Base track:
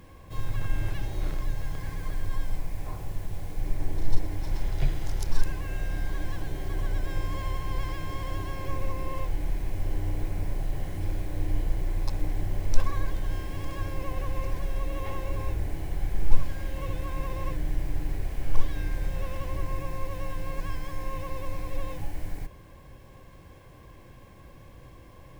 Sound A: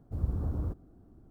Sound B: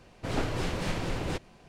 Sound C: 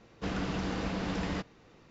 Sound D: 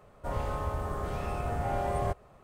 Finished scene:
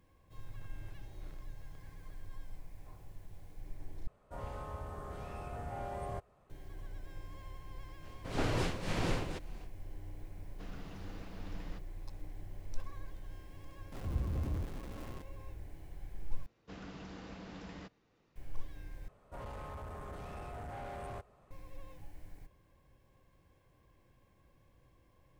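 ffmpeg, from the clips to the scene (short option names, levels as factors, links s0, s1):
-filter_complex "[4:a]asplit=2[s0][s1];[3:a]asplit=2[s2][s3];[0:a]volume=0.133[s4];[2:a]tremolo=f=1.9:d=0.69[s5];[1:a]aeval=exprs='val(0)+0.5*0.015*sgn(val(0))':c=same[s6];[s1]asoftclip=type=tanh:threshold=0.0237[s7];[s4]asplit=4[s8][s9][s10][s11];[s8]atrim=end=4.074[s12];[s0]atrim=end=2.43,asetpts=PTS-STARTPTS,volume=0.299[s13];[s9]atrim=start=6.496:end=16.464[s14];[s3]atrim=end=1.9,asetpts=PTS-STARTPTS,volume=0.188[s15];[s10]atrim=start=18.356:end=19.084[s16];[s7]atrim=end=2.43,asetpts=PTS-STARTPTS,volume=0.398[s17];[s11]atrim=start=21.506[s18];[s5]atrim=end=1.68,asetpts=PTS-STARTPTS,afade=t=in:d=0.05,afade=t=out:st=1.63:d=0.05,adelay=8010[s19];[s2]atrim=end=1.9,asetpts=PTS-STARTPTS,volume=0.141,afade=t=in:d=0.004:c=hsin,afade=t=out:st=1.896:d=0.004:c=hsin,adelay=10370[s20];[s6]atrim=end=1.3,asetpts=PTS-STARTPTS,volume=0.531,afade=t=in:d=0.004:c=hsin,afade=t=out:st=1.296:d=0.004:c=hsin,adelay=13920[s21];[s12][s13]acrossfade=d=0.004:c1=hsin:c2=hsin[s22];[s22][s14]acrossfade=d=0.004:c1=hsin:c2=hsin[s23];[s23][s15]acrossfade=d=0.004:c1=hsin:c2=hsin[s24];[s24][s16]acrossfade=d=0.004:c1=hsin:c2=hsin[s25];[s25][s17]acrossfade=d=0.004:c1=hsin:c2=hsin[s26];[s26][s18]acrossfade=d=0.004:c1=hsin:c2=hsin[s27];[s27][s19][s20][s21]amix=inputs=4:normalize=0"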